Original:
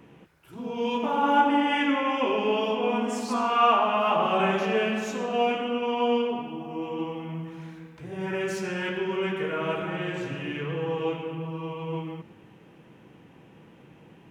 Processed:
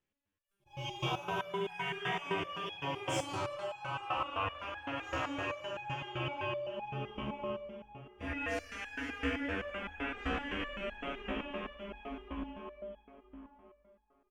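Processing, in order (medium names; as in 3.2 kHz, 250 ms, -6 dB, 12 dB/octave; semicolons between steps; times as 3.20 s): upward compressor, threshold -35 dBFS; tilt shelf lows -7.5 dB, about 1.2 kHz; gate -37 dBFS, range -38 dB; delay 481 ms -8.5 dB; plate-style reverb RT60 4.7 s, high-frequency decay 0.6×, DRR -4.5 dB; compression 6:1, threshold -25 dBFS, peak gain reduction 11.5 dB; ring modulator 110 Hz; tone controls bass +7 dB, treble +1 dB, from 3.20 s treble -12 dB; resonator arpeggio 7.8 Hz 68–830 Hz; trim +5 dB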